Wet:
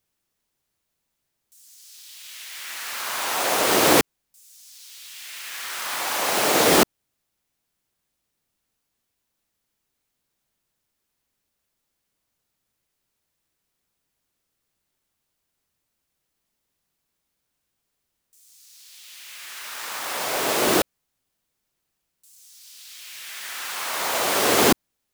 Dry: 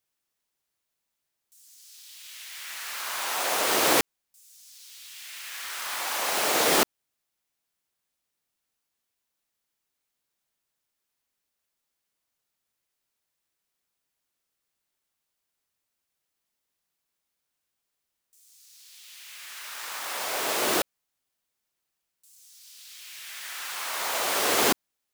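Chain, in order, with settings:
low-shelf EQ 360 Hz +9 dB
level +3.5 dB

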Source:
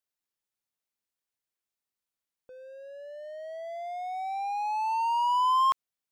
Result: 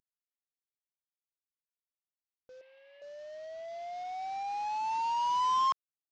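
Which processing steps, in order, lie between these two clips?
variable-slope delta modulation 32 kbit/s
0:02.61–0:03.02: loudspeaker in its box 490–3,400 Hz, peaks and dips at 550 Hz −9 dB, 840 Hz +8 dB, 1,400 Hz −8 dB, 2,100 Hz +8 dB, 3,000 Hz +5 dB
level −4 dB

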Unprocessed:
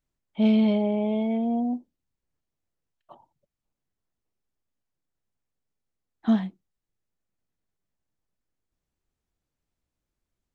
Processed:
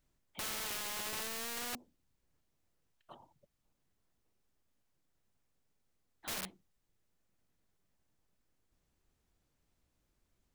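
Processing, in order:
wrap-around overflow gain 26 dB
every bin compressed towards the loudest bin 2 to 1
level +1 dB

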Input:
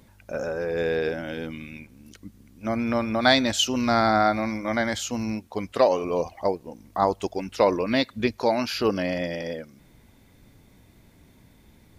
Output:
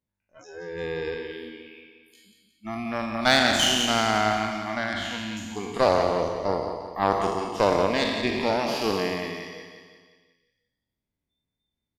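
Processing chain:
peak hold with a decay on every bin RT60 1.94 s
0:04.93–0:05.37: high shelf with overshoot 5,000 Hz −10.5 dB, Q 1.5
harmonic generator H 3 −17 dB, 4 −25 dB, 7 −37 dB, 8 −35 dB, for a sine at −1.5 dBFS
noise reduction from a noise print of the clip's start 28 dB
repeating echo 177 ms, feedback 51%, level −9 dB
level −1 dB

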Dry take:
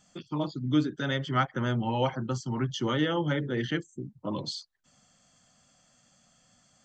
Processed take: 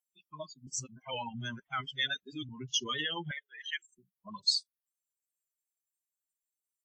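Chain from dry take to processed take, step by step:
spectral dynamics exaggerated over time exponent 3
brickwall limiter −28.5 dBFS, peak gain reduction 12 dB
0:03.31–0:03.86: high-pass filter 990 Hz 24 dB per octave
tape wow and flutter 28 cents
tilt shelving filter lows −10 dB, about 1,400 Hz
0:00.67–0:02.49: reverse
level +4 dB
WMA 32 kbit/s 48,000 Hz

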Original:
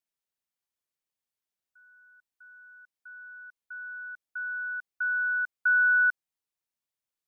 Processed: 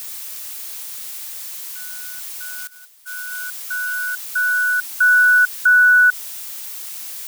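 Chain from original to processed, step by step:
background noise blue −47 dBFS
0:02.67–0:03.32: noise gate −43 dBFS, range −19 dB
boost into a limiter +22 dB
level −6.5 dB

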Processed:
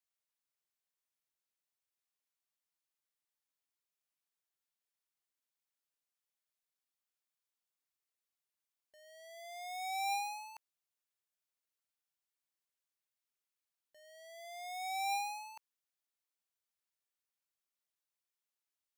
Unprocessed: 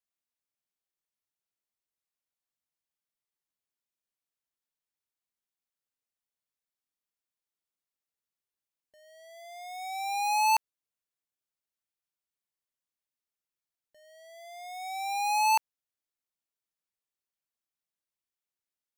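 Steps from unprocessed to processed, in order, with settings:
low-shelf EQ 360 Hz −11 dB
compressor whose output falls as the input rises −33 dBFS, ratio −0.5
level −5 dB

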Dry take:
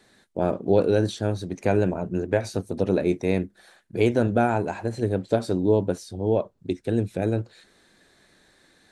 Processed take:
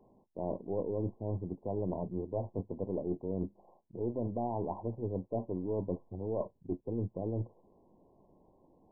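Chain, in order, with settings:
gain on one half-wave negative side −3 dB
reversed playback
downward compressor 6 to 1, threshold −32 dBFS, peak gain reduction 15.5 dB
reversed playback
linear-phase brick-wall low-pass 1,100 Hz

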